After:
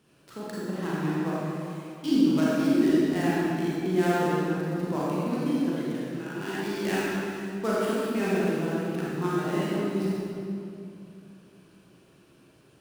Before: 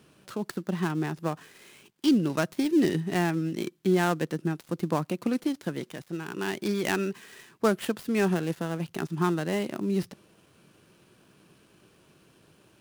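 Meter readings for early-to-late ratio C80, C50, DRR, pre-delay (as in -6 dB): -2.5 dB, -5.0 dB, -8.0 dB, 33 ms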